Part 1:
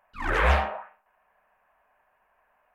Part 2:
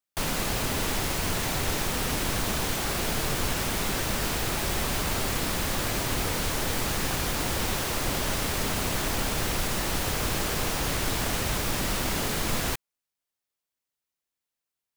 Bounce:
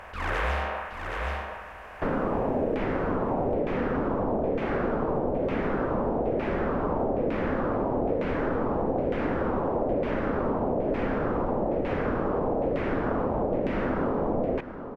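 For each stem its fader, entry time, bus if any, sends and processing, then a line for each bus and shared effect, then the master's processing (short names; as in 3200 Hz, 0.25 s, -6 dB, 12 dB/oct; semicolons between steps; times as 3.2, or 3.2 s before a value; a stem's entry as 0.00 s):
-6.0 dB, 0.00 s, no send, echo send -6.5 dB, per-bin compression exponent 0.4
-1.0 dB, 1.85 s, no send, echo send -14.5 dB, ten-band EQ 250 Hz +9 dB, 500 Hz +10 dB, 2000 Hz -4 dB, 4000 Hz -6 dB, 8000 Hz -8 dB, 16000 Hz -6 dB; LFO low-pass saw down 1.1 Hz 550–2400 Hz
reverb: off
echo: echo 0.771 s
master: compressor, threshold -23 dBFS, peak gain reduction 7 dB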